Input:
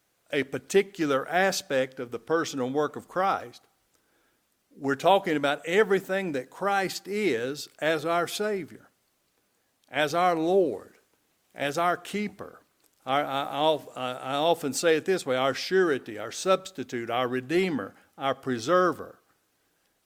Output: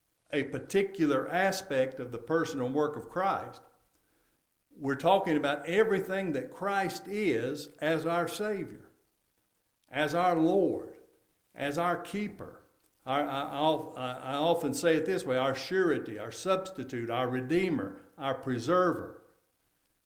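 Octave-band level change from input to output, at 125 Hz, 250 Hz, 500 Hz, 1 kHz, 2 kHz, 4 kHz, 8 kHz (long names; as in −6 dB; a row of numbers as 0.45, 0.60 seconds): −0.5, −1.5, −4.0, −4.0, −5.0, −6.5, −7.5 decibels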